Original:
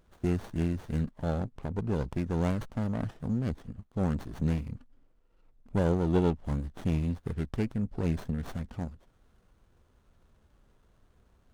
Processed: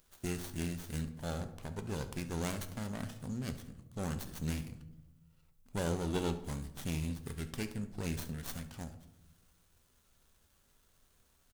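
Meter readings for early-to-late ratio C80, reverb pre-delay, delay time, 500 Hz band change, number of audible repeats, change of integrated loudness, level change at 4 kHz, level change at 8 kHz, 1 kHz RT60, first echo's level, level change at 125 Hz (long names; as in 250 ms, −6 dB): 15.5 dB, 5 ms, 70 ms, −8.0 dB, 1, −7.5 dB, +4.5 dB, can't be measured, 0.75 s, −17.5 dB, −8.5 dB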